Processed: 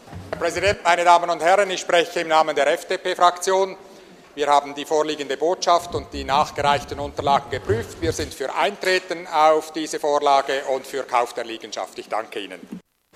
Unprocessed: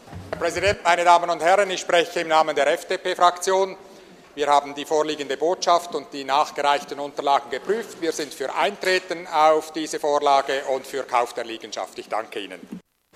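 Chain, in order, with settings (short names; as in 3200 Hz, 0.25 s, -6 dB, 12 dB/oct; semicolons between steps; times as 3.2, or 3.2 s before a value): 5.79–8.34 octaver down 2 oct, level +1 dB; gain +1 dB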